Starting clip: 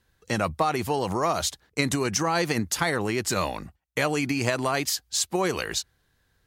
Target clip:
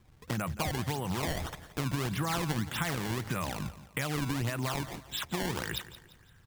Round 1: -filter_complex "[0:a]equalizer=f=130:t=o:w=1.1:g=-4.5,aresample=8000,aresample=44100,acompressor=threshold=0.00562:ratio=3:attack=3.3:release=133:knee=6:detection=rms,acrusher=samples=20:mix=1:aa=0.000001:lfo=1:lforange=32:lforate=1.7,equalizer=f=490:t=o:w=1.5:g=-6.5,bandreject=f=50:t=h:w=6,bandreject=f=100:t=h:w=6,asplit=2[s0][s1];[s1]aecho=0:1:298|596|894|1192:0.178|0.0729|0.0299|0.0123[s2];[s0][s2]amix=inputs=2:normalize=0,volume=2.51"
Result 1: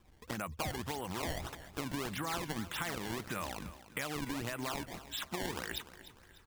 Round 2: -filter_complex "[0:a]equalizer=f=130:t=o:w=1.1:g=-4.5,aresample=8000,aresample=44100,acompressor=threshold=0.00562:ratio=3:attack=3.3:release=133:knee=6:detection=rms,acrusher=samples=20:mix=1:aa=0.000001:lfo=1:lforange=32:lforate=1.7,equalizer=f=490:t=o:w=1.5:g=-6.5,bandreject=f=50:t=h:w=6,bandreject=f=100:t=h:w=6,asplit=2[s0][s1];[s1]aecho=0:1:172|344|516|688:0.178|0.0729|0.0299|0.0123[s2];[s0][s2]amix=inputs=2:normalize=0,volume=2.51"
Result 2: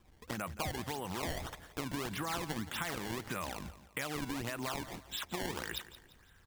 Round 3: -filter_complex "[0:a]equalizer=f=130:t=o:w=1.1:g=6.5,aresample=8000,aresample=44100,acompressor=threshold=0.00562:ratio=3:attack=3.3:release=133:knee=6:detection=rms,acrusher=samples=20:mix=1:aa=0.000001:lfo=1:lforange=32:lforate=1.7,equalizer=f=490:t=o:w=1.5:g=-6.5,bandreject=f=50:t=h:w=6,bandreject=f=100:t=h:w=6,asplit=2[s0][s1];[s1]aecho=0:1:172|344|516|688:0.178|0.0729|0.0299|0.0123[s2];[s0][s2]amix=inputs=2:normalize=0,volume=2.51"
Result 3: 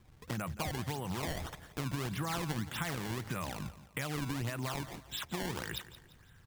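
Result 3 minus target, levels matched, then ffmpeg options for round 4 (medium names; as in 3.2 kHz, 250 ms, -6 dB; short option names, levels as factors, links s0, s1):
compression: peak gain reduction +4.5 dB
-filter_complex "[0:a]equalizer=f=130:t=o:w=1.1:g=6.5,aresample=8000,aresample=44100,acompressor=threshold=0.0119:ratio=3:attack=3.3:release=133:knee=6:detection=rms,acrusher=samples=20:mix=1:aa=0.000001:lfo=1:lforange=32:lforate=1.7,equalizer=f=490:t=o:w=1.5:g=-6.5,bandreject=f=50:t=h:w=6,bandreject=f=100:t=h:w=6,asplit=2[s0][s1];[s1]aecho=0:1:172|344|516|688:0.178|0.0729|0.0299|0.0123[s2];[s0][s2]amix=inputs=2:normalize=0,volume=2.51"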